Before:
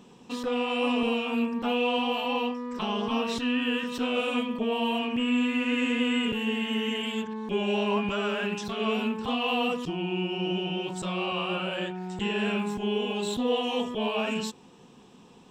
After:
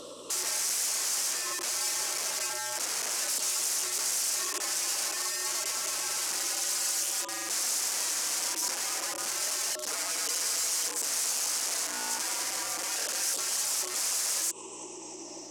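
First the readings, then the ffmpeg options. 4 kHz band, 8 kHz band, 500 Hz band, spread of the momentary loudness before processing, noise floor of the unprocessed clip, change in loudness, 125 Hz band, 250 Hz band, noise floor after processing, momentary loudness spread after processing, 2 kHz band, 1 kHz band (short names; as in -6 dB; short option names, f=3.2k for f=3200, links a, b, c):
0.0 dB, +23.0 dB, -15.5 dB, 6 LU, -53 dBFS, 0.0 dB, under -20 dB, -23.0 dB, -43 dBFS, 4 LU, -4.5 dB, -7.5 dB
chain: -af "afftfilt=real='re*pow(10,13/40*sin(2*PI*(0.62*log(max(b,1)*sr/1024/100)/log(2)-(-0.3)*(pts-256)/sr)))':imag='im*pow(10,13/40*sin(2*PI*(0.62*log(max(b,1)*sr/1024/100)/log(2)-(-0.3)*(pts-256)/sr)))':win_size=1024:overlap=0.75,equalizer=f=1.5k:t=o:w=0.55:g=-13,acontrast=45,afreqshift=120,acompressor=threshold=-28dB:ratio=2.5,aeval=exprs='(mod(23.7*val(0)+1,2)-1)/23.7':c=same,aeval=exprs='val(0)+0.00562*(sin(2*PI*60*n/s)+sin(2*PI*2*60*n/s)/2+sin(2*PI*3*60*n/s)/3+sin(2*PI*4*60*n/s)/4+sin(2*PI*5*60*n/s)/5)':c=same,alimiter=level_in=13dB:limit=-24dB:level=0:latency=1:release=137,volume=-13dB,aexciter=amount=6:drive=5.8:freq=5.2k,highpass=380,lowpass=7.3k,volume=5.5dB"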